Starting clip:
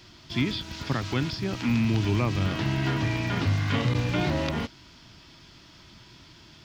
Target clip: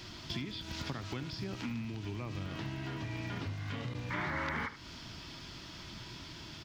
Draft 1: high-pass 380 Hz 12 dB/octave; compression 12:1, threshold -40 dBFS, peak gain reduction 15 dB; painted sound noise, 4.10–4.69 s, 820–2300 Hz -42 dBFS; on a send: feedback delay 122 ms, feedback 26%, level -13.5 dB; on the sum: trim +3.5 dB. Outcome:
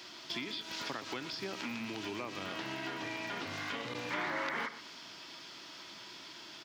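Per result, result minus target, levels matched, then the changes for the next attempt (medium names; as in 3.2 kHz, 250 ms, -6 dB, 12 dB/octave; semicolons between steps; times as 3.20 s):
echo 45 ms late; 500 Hz band +2.5 dB
change: feedback delay 77 ms, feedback 26%, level -13.5 dB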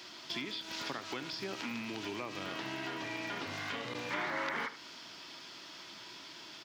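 500 Hz band +2.5 dB
remove: high-pass 380 Hz 12 dB/octave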